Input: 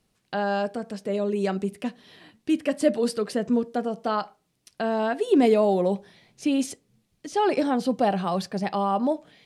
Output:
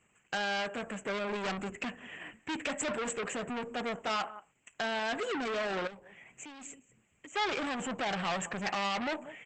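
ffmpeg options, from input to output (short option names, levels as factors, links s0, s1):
-filter_complex "[0:a]asuperstop=centerf=4600:order=8:qfactor=0.98,asplit=2[s0][s1];[s1]adelay=186.6,volume=0.0562,highshelf=f=4000:g=-4.2[s2];[s0][s2]amix=inputs=2:normalize=0,alimiter=limit=0.1:level=0:latency=1:release=11,highpass=48,asettb=1/sr,asplit=3[s3][s4][s5];[s3]atrim=end=1.144[s6];[s4]atrim=start=1.14:end=2.51,asetpts=PTS-STARTPTS,afade=t=in:d=0.004:c=qsin,afade=t=out:st=1.366:d=0.004:c=qsin,lowshelf=f=310:g=2.5[s7];[s5]atrim=start=2.506[s8];[s6][s7]acrossfade=d=0.004:c1=hsin:c2=qsin[s9];[s9][s8]acrossfade=d=0.004:c1=qsin:c2=hsin,asoftclip=type=tanh:threshold=0.0237,asettb=1/sr,asplit=3[s10][s11][s12];[s10]atrim=end=5.874[s13];[s11]atrim=start=5.87:end=7.36,asetpts=PTS-STARTPTS,afade=t=in:d=0.004:c=qsin,afade=t=out:st=1.486:d=0.004:c=qsin,acompressor=threshold=0.002:ratio=2.5[s14];[s12]atrim=start=7.356[s15];[s13][s14]acrossfade=d=0.004:c1=hsin:c2=qsin[s16];[s16][s15]acrossfade=d=0.004:c1=qsin:c2=hsin,tiltshelf=f=1100:g=-8.5,volume=2" -ar 48000 -c:a libopus -b:a 12k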